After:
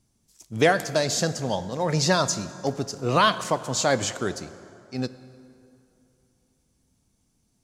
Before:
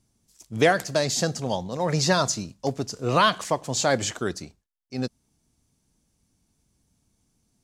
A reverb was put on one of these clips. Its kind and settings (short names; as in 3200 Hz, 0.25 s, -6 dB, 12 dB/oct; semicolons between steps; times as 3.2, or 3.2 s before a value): plate-style reverb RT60 2.8 s, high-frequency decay 0.6×, DRR 13.5 dB